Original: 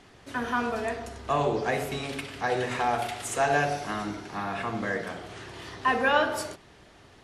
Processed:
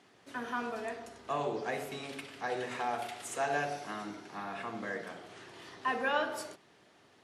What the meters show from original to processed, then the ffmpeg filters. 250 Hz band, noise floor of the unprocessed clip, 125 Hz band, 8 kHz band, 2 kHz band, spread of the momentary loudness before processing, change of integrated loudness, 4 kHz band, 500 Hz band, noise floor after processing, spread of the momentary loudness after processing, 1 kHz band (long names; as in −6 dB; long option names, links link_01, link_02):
−9.0 dB, −54 dBFS, −13.5 dB, −8.0 dB, −8.0 dB, 13 LU, −8.0 dB, −8.0 dB, −8.0 dB, −63 dBFS, 13 LU, −8.0 dB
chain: -af "highpass=170,volume=-8dB"